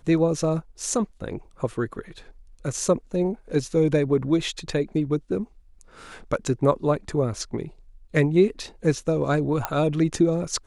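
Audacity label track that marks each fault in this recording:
9.650000	9.650000	pop -9 dBFS

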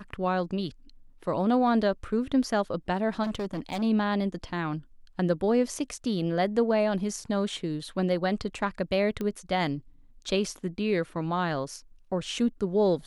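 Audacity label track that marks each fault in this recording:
3.230000	3.830000	clipped -27.5 dBFS
9.210000	9.210000	pop -20 dBFS

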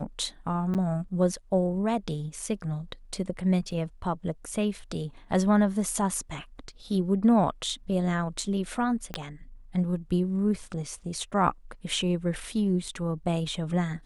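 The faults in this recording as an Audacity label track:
0.740000	0.750000	dropout 8.3 ms
3.710000	3.710000	dropout 4 ms
9.140000	9.140000	pop -17 dBFS

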